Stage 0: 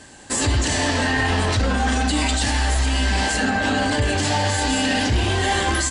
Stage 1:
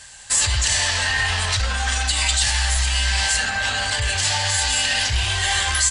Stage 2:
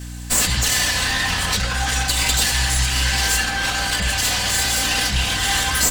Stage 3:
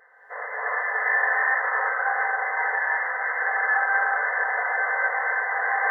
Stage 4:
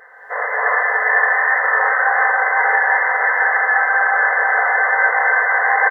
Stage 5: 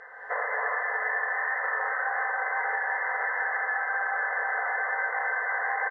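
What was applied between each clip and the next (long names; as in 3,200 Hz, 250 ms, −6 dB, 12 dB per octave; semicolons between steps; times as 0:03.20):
guitar amp tone stack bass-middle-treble 10-0-10; level +6.5 dB
lower of the sound and its delayed copy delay 4 ms; mains hum 60 Hz, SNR 12 dB; level +2.5 dB
brick-wall band-pass 420–2,100 Hz; reverb whose tail is shaped and stops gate 380 ms rising, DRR −7.5 dB; level −6.5 dB
speech leveller 0.5 s; single-tap delay 500 ms −5 dB; level +7.5 dB
downward compressor 5 to 1, threshold −25 dBFS, peak gain reduction 13 dB; high-frequency loss of the air 100 metres; level −1.5 dB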